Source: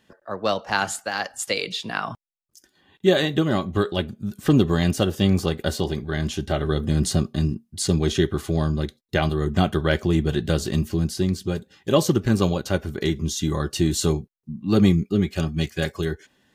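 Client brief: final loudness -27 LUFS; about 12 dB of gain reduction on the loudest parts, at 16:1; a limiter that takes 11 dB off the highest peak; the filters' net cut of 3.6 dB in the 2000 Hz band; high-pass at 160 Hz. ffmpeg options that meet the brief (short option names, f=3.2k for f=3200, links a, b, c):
-af "highpass=160,equalizer=f=2k:t=o:g=-5,acompressor=threshold=-25dB:ratio=16,volume=7.5dB,alimiter=limit=-16dB:level=0:latency=1"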